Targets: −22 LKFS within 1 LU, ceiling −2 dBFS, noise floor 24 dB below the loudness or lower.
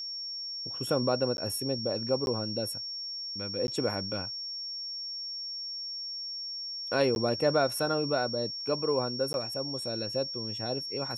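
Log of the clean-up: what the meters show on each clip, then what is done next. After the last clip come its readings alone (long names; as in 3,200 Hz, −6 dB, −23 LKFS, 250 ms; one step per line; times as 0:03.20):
number of dropouts 5; longest dropout 11 ms; interfering tone 5,500 Hz; level of the tone −35 dBFS; integrated loudness −31.0 LKFS; sample peak −13.5 dBFS; target loudness −22.0 LKFS
→ repair the gap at 0:01.37/0:02.26/0:03.67/0:07.15/0:09.33, 11 ms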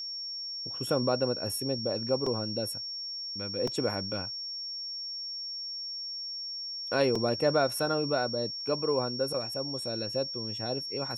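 number of dropouts 0; interfering tone 5,500 Hz; level of the tone −35 dBFS
→ notch filter 5,500 Hz, Q 30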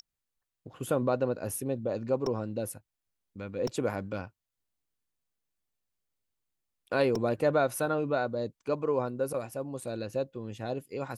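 interfering tone none found; integrated loudness −31.5 LKFS; sample peak −14.0 dBFS; target loudness −22.0 LKFS
→ level +9.5 dB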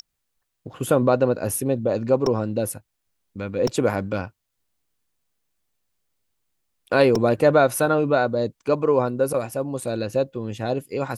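integrated loudness −22.0 LKFS; sample peak −4.5 dBFS; background noise floor −77 dBFS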